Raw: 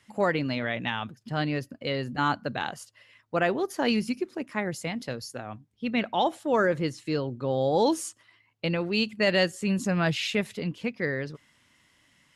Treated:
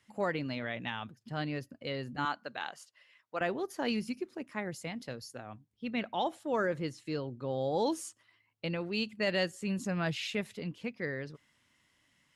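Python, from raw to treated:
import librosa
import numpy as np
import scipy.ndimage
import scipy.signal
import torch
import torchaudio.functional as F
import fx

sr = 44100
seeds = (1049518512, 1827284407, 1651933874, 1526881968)

y = fx.weighting(x, sr, curve='A', at=(2.25, 3.41))
y = y * 10.0 ** (-7.5 / 20.0)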